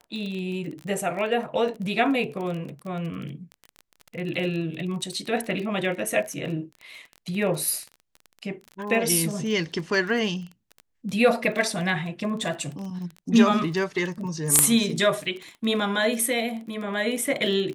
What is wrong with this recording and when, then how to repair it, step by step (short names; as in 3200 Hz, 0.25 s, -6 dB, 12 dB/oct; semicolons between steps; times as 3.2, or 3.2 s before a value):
crackle 23/s -31 dBFS
14.59 pop 0 dBFS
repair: de-click